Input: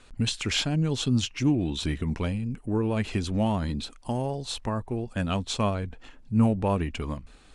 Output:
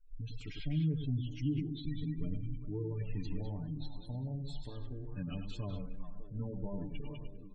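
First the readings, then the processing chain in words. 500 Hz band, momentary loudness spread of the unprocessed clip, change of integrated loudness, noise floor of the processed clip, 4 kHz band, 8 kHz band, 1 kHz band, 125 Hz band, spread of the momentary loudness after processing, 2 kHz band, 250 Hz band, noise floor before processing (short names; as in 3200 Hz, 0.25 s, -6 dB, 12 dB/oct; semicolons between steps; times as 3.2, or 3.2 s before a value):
-16.0 dB, 8 LU, -12.0 dB, -48 dBFS, -20.5 dB, under -30 dB, -24.0 dB, -8.5 dB, 11 LU, -20.5 dB, -12.5 dB, -52 dBFS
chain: de-esser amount 80%; bell 84 Hz -7.5 dB 2.9 oct; feedback echo 0.101 s, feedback 34%, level -6.5 dB; flange 0.36 Hz, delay 9 ms, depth 7.4 ms, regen -45%; AGC gain up to 5 dB; comb 6.8 ms, depth 85%; spectral gate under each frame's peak -15 dB strong; passive tone stack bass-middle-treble 10-0-1; delay with a stepping band-pass 0.2 s, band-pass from 2600 Hz, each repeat -1.4 oct, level -3 dB; wow and flutter 20 cents; gain +5 dB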